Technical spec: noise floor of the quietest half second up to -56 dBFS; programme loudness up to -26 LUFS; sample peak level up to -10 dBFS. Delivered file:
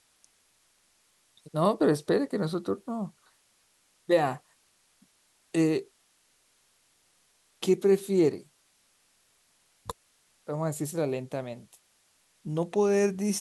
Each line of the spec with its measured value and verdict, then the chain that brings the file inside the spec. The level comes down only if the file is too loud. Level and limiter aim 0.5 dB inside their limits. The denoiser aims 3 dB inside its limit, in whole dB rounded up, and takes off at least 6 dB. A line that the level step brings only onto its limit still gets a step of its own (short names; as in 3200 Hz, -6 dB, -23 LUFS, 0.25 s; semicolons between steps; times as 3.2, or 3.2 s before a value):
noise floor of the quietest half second -68 dBFS: OK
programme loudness -28.0 LUFS: OK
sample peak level -11.5 dBFS: OK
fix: none